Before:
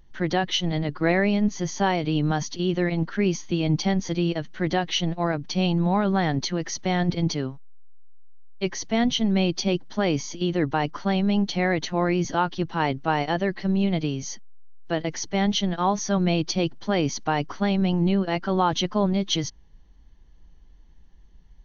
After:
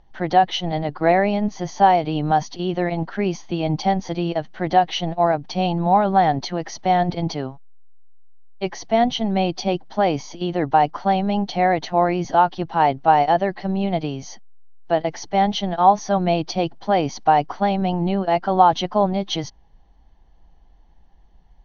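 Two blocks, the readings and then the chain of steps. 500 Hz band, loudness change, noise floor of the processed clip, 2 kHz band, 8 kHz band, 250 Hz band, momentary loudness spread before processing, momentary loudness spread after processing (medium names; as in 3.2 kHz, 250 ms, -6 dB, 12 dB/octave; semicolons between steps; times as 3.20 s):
+5.5 dB, +4.0 dB, -52 dBFS, +0.5 dB, no reading, 0.0 dB, 5 LU, 9 LU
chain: low-pass 5.8 kHz 24 dB/octave; peaking EQ 750 Hz +14 dB 0.8 oct; trim -1 dB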